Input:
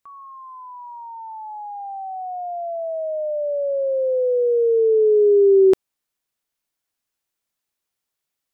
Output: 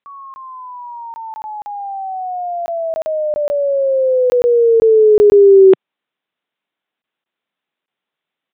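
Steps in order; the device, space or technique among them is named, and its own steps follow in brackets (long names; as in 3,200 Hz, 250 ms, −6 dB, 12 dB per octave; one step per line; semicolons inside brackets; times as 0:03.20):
call with lost packets (high-pass filter 150 Hz 24 dB per octave; downsampling to 8,000 Hz; dropped packets of 20 ms random)
level +6.5 dB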